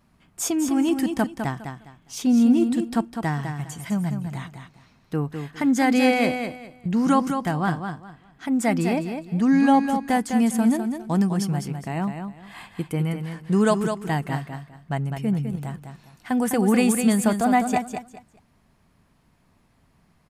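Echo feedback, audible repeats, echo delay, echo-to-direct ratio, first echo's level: 24%, 3, 204 ms, -6.5 dB, -7.0 dB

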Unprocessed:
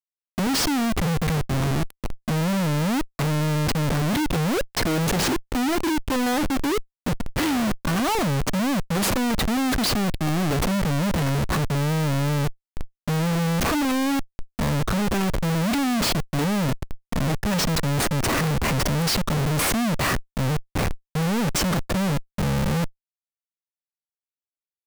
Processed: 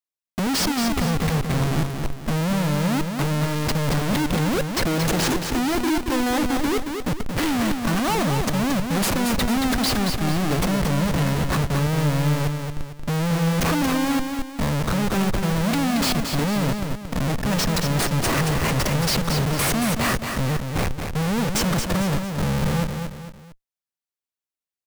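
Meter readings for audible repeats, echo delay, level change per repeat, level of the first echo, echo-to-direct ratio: 3, 226 ms, -8.0 dB, -6.0 dB, -5.5 dB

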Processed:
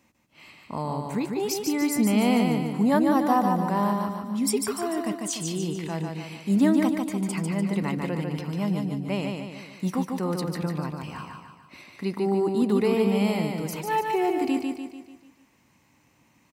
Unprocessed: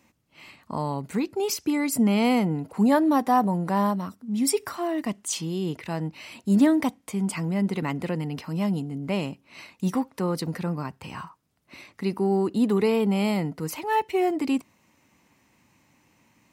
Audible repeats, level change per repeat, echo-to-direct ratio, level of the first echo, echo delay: 6, -6.0 dB, -3.0 dB, -4.0 dB, 147 ms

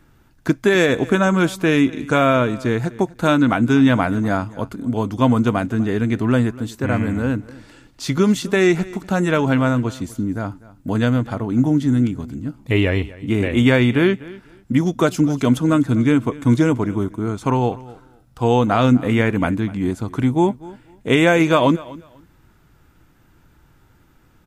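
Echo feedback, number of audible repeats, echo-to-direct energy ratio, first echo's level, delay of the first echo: 20%, 2, -20.0 dB, -20.0 dB, 247 ms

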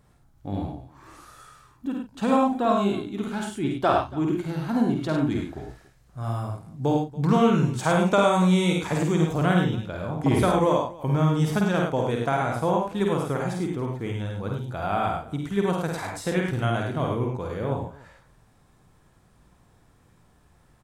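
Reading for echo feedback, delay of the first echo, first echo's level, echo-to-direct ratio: no regular repeats, 50 ms, -4.0 dB, 0.0 dB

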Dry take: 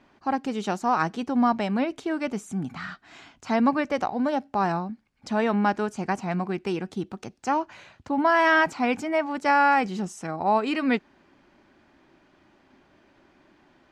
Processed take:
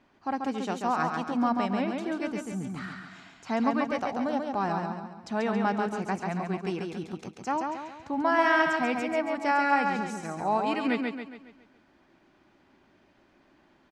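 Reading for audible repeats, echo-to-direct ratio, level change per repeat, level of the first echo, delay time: 5, -3.0 dB, -7.0 dB, -4.0 dB, 138 ms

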